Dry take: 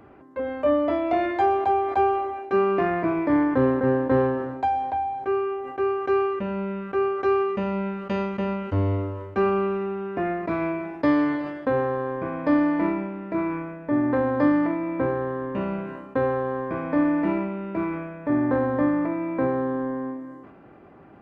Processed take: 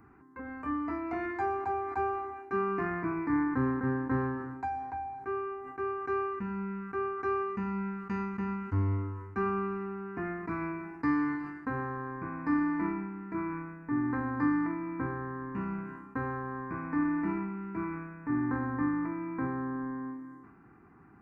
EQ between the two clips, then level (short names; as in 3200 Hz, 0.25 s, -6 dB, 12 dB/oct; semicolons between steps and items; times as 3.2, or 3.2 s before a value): fixed phaser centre 1400 Hz, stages 4; -4.5 dB